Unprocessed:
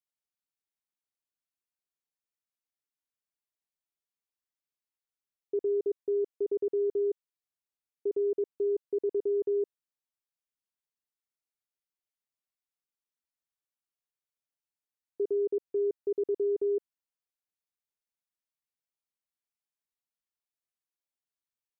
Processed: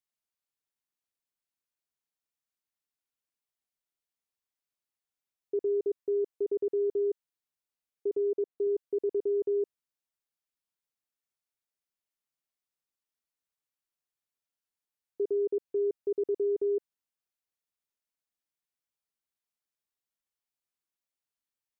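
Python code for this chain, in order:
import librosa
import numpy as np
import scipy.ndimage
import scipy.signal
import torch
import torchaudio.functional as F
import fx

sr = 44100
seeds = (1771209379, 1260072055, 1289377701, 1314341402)

y = fx.bandpass_q(x, sr, hz=500.0, q=0.52, at=(8.17, 8.67))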